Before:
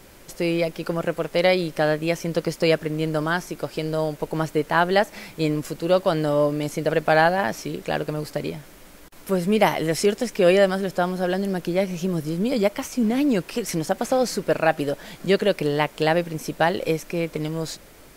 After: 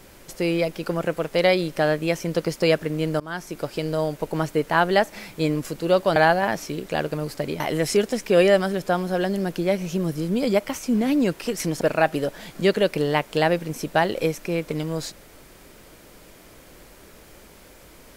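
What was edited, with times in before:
3.20–3.58 s: fade in, from -21 dB
6.16–7.12 s: delete
8.56–9.69 s: delete
13.90–14.46 s: delete

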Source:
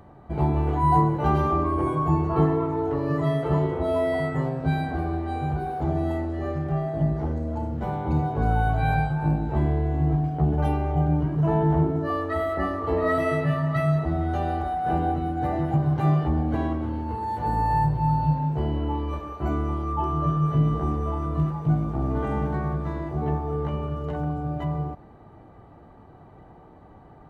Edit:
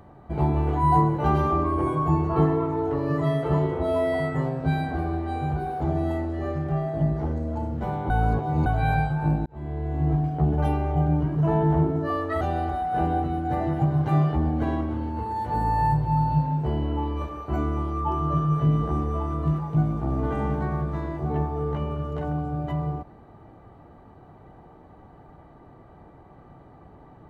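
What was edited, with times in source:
8.10–8.66 s: reverse
9.46–10.11 s: fade in
12.41–14.33 s: delete

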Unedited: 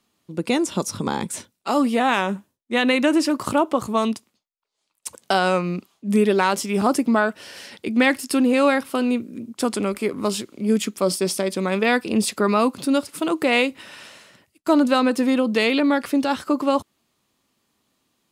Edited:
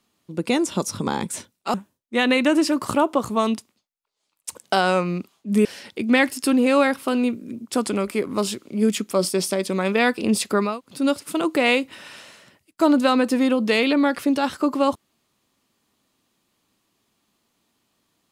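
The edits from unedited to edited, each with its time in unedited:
1.74–2.32 s: delete
6.23–7.52 s: delete
12.56–12.83 s: room tone, crossfade 0.24 s

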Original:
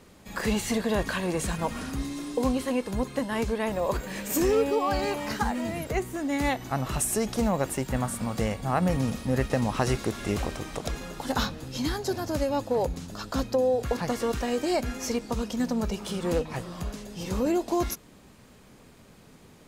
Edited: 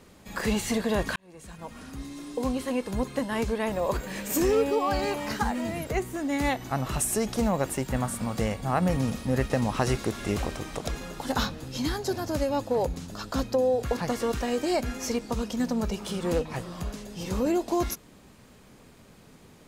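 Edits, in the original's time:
1.16–2.98 s: fade in

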